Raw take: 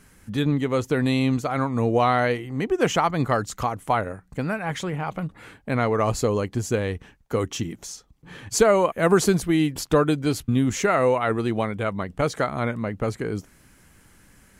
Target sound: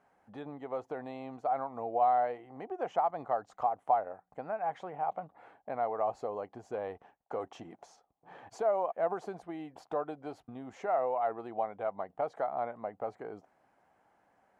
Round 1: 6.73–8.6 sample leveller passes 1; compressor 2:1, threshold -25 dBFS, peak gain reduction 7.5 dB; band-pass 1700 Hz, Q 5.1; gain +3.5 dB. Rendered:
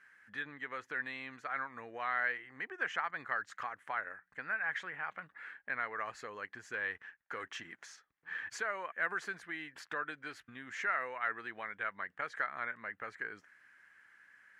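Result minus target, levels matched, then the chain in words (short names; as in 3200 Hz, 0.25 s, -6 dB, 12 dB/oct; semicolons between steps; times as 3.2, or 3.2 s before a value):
2000 Hz band +20.0 dB
6.73–8.6 sample leveller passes 1; compressor 2:1, threshold -25 dBFS, peak gain reduction 7.5 dB; band-pass 740 Hz, Q 5.1; gain +3.5 dB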